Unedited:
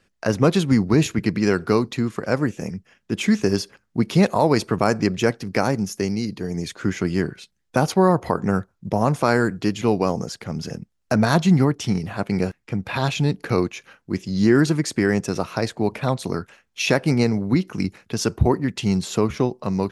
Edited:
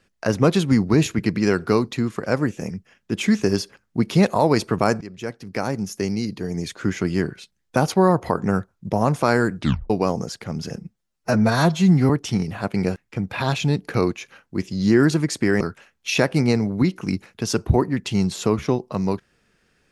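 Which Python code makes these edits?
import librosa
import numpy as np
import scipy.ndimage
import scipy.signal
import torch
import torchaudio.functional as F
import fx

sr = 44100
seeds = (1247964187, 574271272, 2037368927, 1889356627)

y = fx.edit(x, sr, fx.fade_in_from(start_s=5.01, length_s=1.14, floor_db=-19.5),
    fx.tape_stop(start_s=9.59, length_s=0.31),
    fx.stretch_span(start_s=10.76, length_s=0.89, factor=1.5),
    fx.cut(start_s=15.16, length_s=1.16), tone=tone)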